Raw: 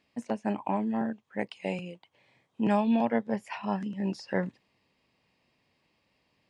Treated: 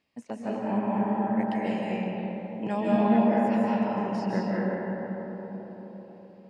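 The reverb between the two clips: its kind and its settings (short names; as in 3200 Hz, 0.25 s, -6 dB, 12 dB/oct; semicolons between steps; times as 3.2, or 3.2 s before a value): digital reverb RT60 4.7 s, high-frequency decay 0.3×, pre-delay 0.115 s, DRR -7 dB; gain -5 dB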